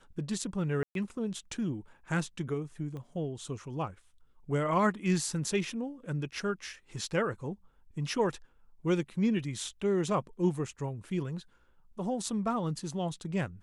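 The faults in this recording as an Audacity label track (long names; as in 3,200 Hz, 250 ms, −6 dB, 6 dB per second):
0.830000	0.950000	drop-out 122 ms
2.970000	2.970000	click −32 dBFS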